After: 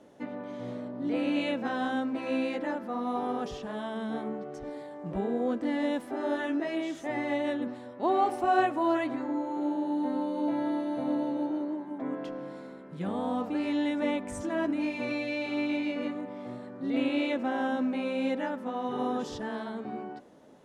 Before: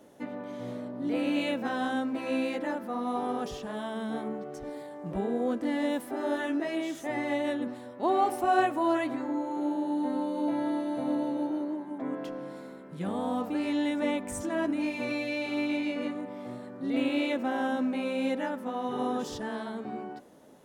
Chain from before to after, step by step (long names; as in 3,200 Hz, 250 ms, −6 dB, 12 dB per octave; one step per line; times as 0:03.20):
high-frequency loss of the air 54 metres